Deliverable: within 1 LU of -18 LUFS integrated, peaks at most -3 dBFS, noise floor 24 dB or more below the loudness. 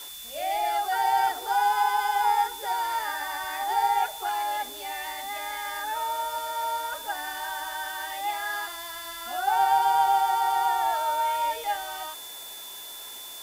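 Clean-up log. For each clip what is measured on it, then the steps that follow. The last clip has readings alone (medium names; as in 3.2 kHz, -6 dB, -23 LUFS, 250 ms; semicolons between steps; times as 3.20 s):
steady tone 3.5 kHz; tone level -42 dBFS; noise floor -41 dBFS; noise floor target -51 dBFS; loudness -27.0 LUFS; peak level -12.5 dBFS; loudness target -18.0 LUFS
-> band-stop 3.5 kHz, Q 30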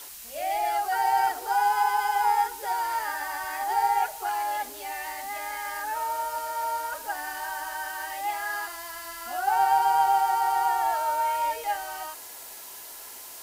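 steady tone not found; noise floor -43 dBFS; noise floor target -51 dBFS
-> noise print and reduce 8 dB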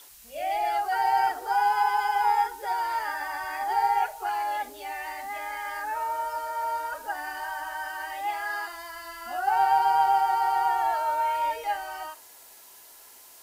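noise floor -51 dBFS; loudness -27.0 LUFS; peak level -12.5 dBFS; loudness target -18.0 LUFS
-> trim +9 dB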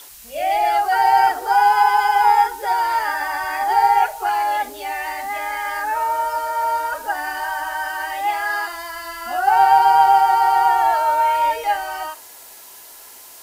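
loudness -18.0 LUFS; peak level -3.5 dBFS; noise floor -42 dBFS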